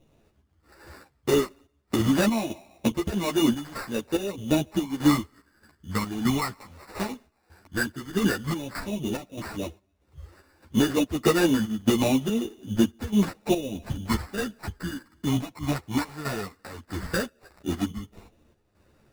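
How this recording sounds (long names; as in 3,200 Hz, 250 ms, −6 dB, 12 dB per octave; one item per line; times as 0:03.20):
phaser sweep stages 12, 0.11 Hz, lowest notch 550–4,400 Hz
aliases and images of a low sample rate 3,200 Hz, jitter 0%
chopped level 1.6 Hz, depth 65%, duty 65%
a shimmering, thickened sound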